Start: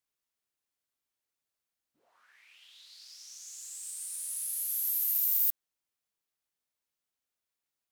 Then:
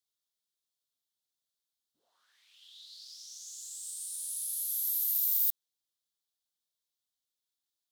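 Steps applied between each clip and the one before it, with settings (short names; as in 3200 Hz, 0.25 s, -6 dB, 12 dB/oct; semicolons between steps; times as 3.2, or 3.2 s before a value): resonant high shelf 2900 Hz +6.5 dB, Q 3; gain -7.5 dB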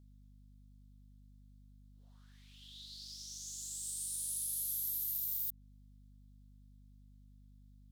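compressor 10:1, threshold -34 dBFS, peak gain reduction 10.5 dB; hum 50 Hz, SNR 15 dB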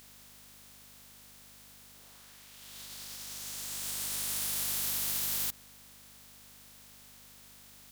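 spectral contrast lowered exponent 0.21; gain +5 dB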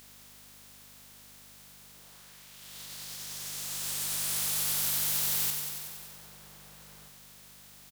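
outdoor echo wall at 270 m, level -10 dB; lo-fi delay 93 ms, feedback 80%, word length 9-bit, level -6 dB; gain +1.5 dB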